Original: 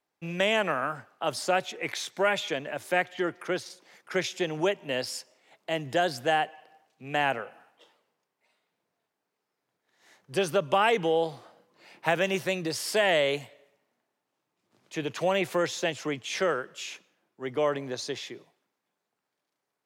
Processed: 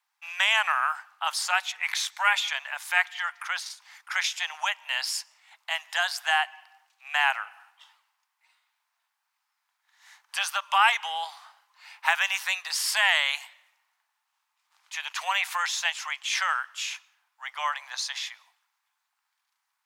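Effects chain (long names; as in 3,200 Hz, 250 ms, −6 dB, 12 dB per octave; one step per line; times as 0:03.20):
Butterworth high-pass 850 Hz 48 dB per octave
level +6 dB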